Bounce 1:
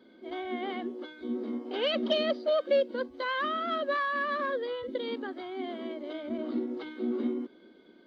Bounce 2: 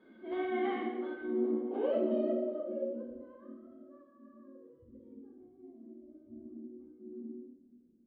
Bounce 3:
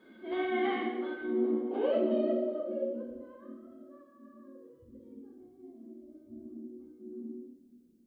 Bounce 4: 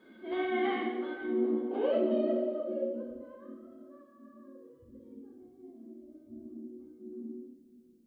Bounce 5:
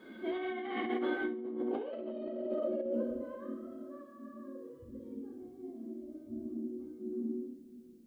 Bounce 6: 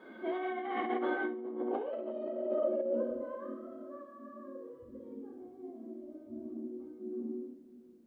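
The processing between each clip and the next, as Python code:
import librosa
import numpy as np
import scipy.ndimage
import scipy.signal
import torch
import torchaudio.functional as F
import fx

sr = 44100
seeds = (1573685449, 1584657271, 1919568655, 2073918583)

y1 = fx.filter_sweep_lowpass(x, sr, from_hz=2100.0, to_hz=120.0, start_s=0.67, end_s=3.69, q=0.92)
y1 = fx.rev_double_slope(y1, sr, seeds[0], early_s=0.83, late_s=2.5, knee_db=-17, drr_db=-5.0)
y1 = y1 * librosa.db_to_amplitude(-6.0)
y2 = fx.high_shelf(y1, sr, hz=2200.0, db=8.0)
y2 = y2 * librosa.db_to_amplitude(2.0)
y3 = y2 + 10.0 ** (-21.0 / 20.0) * np.pad(y2, (int(515 * sr / 1000.0), 0))[:len(y2)]
y4 = fx.over_compress(y3, sr, threshold_db=-37.0, ratio=-1.0)
y4 = y4 * librosa.db_to_amplitude(1.0)
y5 = fx.peak_eq(y4, sr, hz=840.0, db=14.0, octaves=2.9)
y5 = y5 * librosa.db_to_amplitude(-8.5)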